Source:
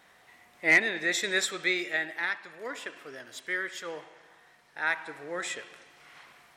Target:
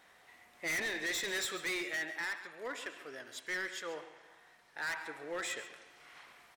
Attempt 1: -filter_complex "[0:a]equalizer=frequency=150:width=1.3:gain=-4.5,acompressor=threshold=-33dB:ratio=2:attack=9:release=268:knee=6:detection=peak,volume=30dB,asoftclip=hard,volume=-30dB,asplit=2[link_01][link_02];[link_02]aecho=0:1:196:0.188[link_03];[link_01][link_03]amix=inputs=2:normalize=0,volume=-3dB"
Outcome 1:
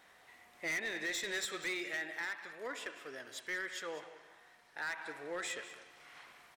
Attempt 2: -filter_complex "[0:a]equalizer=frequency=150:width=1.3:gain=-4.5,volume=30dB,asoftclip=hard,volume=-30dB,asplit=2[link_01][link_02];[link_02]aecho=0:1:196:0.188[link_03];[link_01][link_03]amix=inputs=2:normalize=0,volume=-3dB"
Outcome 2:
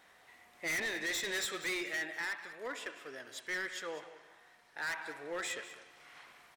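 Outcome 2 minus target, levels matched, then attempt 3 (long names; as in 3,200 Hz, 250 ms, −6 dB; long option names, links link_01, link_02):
echo 58 ms late
-filter_complex "[0:a]equalizer=frequency=150:width=1.3:gain=-4.5,volume=30dB,asoftclip=hard,volume=-30dB,asplit=2[link_01][link_02];[link_02]aecho=0:1:138:0.188[link_03];[link_01][link_03]amix=inputs=2:normalize=0,volume=-3dB"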